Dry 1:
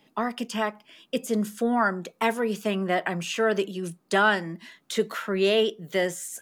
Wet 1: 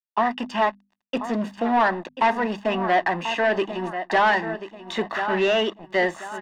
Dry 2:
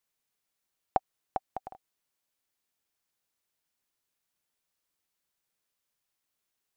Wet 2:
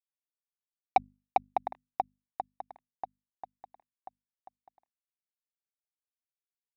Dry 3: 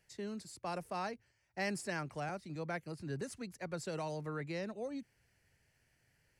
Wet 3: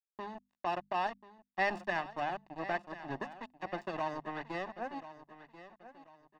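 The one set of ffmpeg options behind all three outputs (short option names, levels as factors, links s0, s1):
-filter_complex "[0:a]adynamicequalizer=threshold=0.00398:dfrequency=140:dqfactor=2.2:tfrequency=140:tqfactor=2.2:attack=5:release=100:ratio=0.375:range=2:mode=cutabove:tftype=bell,aeval=exprs='sgn(val(0))*max(abs(val(0))-0.00841,0)':c=same,bandreject=f=50:t=h:w=6,bandreject=f=100:t=h:w=6,bandreject=f=150:t=h:w=6,bandreject=f=200:t=h:w=6,bandreject=f=250:t=h:w=6,aecho=1:1:1.1:0.7,asplit=2[s0][s1];[s1]aecho=0:1:1037|2074|3111:0.188|0.0622|0.0205[s2];[s0][s2]amix=inputs=2:normalize=0,asoftclip=type=tanh:threshold=0.0631,firequalizer=gain_entry='entry(170,0);entry(340,12);entry(11000,-20)':delay=0.05:min_phase=1"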